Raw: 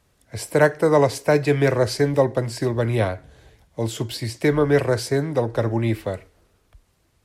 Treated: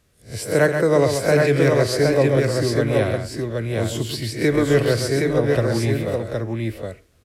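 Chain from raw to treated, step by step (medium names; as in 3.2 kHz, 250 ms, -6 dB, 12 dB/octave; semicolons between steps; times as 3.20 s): reverse spectral sustain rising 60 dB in 0.30 s; peaking EQ 890 Hz -9 dB 0.55 oct; on a send: multi-tap echo 132/768 ms -6.5/-3.5 dB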